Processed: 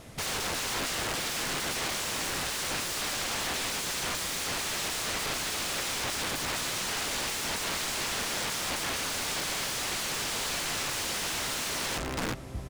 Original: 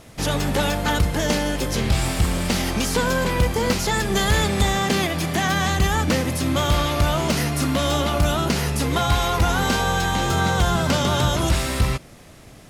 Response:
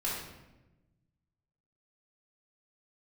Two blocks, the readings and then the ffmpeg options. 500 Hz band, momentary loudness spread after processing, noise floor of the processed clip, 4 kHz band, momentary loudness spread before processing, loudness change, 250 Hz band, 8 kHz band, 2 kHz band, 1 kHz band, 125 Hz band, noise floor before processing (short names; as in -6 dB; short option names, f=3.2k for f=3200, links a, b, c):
-14.5 dB, 1 LU, -34 dBFS, -5.0 dB, 3 LU, -9.0 dB, -17.5 dB, -2.0 dB, -7.5 dB, -12.0 dB, -21.5 dB, -45 dBFS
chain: -filter_complex "[0:a]asplit=2[a][b];[b]adelay=372,lowpass=f=1.1k:p=1,volume=-4.5dB,asplit=2[c][d];[d]adelay=372,lowpass=f=1.1k:p=1,volume=0.28,asplit=2[e][f];[f]adelay=372,lowpass=f=1.1k:p=1,volume=0.28,asplit=2[g][h];[h]adelay=372,lowpass=f=1.1k:p=1,volume=0.28[i];[a][c][e][g][i]amix=inputs=5:normalize=0,aeval=exprs='(mod(15*val(0)+1,2)-1)/15':c=same,acrossover=split=9700[j][k];[k]acompressor=threshold=-39dB:ratio=4:attack=1:release=60[l];[j][l]amix=inputs=2:normalize=0,volume=-2.5dB"